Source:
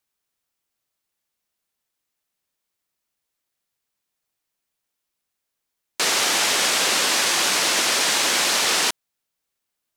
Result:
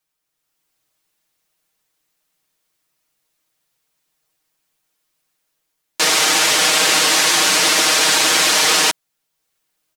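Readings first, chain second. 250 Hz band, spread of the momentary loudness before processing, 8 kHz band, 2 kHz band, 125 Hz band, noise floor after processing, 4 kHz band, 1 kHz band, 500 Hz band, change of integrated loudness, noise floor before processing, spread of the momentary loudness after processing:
+6.0 dB, 5 LU, +5.5 dB, +5.5 dB, +7.0 dB, −75 dBFS, +5.5 dB, +5.5 dB, +5.5 dB, +5.5 dB, −81 dBFS, 3 LU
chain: comb filter 6.4 ms, depth 82%
automatic gain control gain up to 7 dB

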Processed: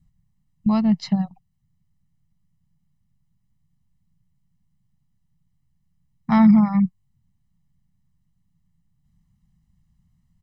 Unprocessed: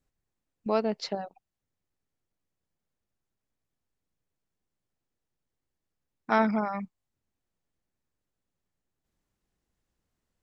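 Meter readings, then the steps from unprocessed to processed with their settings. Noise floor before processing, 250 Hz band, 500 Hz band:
below −85 dBFS, +15.5 dB, −6.0 dB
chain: low shelf with overshoot 250 Hz +13.5 dB, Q 3
comb filter 1 ms, depth 74%

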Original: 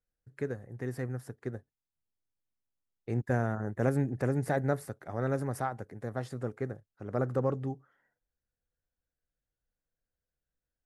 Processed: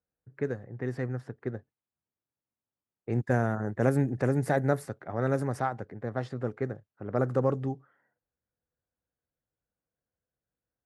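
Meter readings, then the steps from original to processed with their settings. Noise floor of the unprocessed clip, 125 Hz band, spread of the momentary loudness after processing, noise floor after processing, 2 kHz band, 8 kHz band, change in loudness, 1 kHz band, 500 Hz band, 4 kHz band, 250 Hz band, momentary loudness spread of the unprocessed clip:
below −85 dBFS, +2.5 dB, 11 LU, below −85 dBFS, +3.5 dB, +0.5 dB, +3.0 dB, +3.5 dB, +3.5 dB, can't be measured, +3.5 dB, 11 LU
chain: low-pass that shuts in the quiet parts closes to 1,400 Hz, open at −26 dBFS
high-pass filter 86 Hz
level +3.5 dB

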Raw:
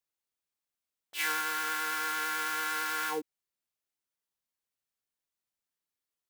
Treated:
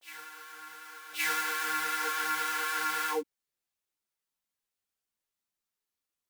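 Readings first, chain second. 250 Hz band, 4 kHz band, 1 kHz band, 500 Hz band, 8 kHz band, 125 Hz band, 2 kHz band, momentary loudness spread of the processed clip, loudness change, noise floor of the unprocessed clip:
0.0 dB, +0.5 dB, +1.5 dB, +3.0 dB, +1.0 dB, can't be measured, +1.0 dB, 16 LU, +1.0 dB, below −85 dBFS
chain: backwards echo 1,119 ms −15.5 dB
string-ensemble chorus
level +4 dB

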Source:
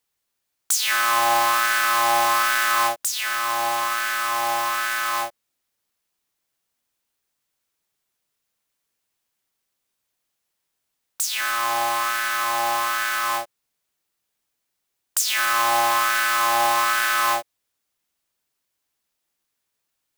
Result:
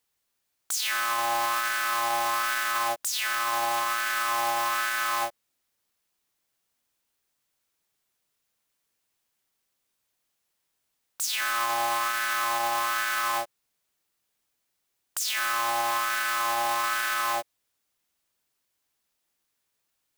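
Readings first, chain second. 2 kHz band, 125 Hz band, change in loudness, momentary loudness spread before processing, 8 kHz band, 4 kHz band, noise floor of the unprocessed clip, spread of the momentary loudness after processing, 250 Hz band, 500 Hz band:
−5.5 dB, can't be measured, −5.5 dB, 6 LU, −6.0 dB, −5.5 dB, −79 dBFS, 3 LU, −5.5 dB, −5.5 dB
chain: brickwall limiter −16 dBFS, peak gain reduction 11 dB

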